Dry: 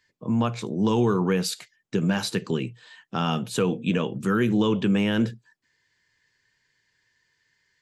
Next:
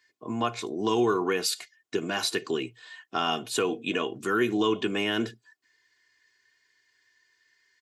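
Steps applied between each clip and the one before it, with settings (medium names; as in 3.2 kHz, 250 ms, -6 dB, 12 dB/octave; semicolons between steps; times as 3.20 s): high-pass 430 Hz 6 dB/octave; comb 2.8 ms, depth 67%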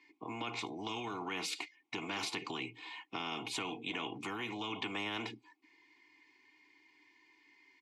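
peak limiter -19.5 dBFS, peak gain reduction 7 dB; vowel filter u; spectrum-flattening compressor 4:1; trim +1.5 dB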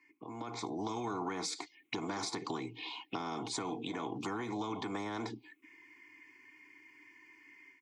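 compression 2:1, threshold -45 dBFS, peak gain reduction 6 dB; touch-sensitive phaser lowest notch 590 Hz, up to 2.8 kHz, full sweep at -42 dBFS; level rider gain up to 9 dB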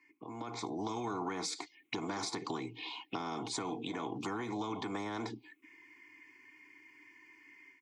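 no audible change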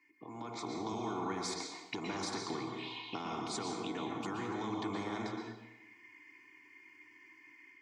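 reverberation RT60 0.95 s, pre-delay 108 ms, DRR 1 dB; trim -2.5 dB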